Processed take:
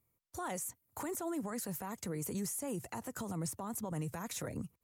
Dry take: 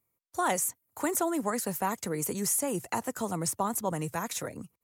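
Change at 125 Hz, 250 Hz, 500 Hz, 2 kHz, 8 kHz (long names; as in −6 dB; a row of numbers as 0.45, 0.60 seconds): −3.5, −6.0, −9.5, −11.0, −10.5 decibels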